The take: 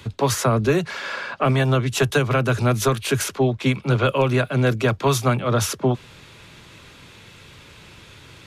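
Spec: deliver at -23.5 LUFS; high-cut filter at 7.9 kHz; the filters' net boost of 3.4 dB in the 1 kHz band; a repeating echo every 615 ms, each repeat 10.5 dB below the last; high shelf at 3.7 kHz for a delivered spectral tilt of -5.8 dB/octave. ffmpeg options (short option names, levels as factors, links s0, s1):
-af "lowpass=7900,equalizer=f=1000:t=o:g=5,highshelf=f=3700:g=-7,aecho=1:1:615|1230|1845:0.299|0.0896|0.0269,volume=0.668"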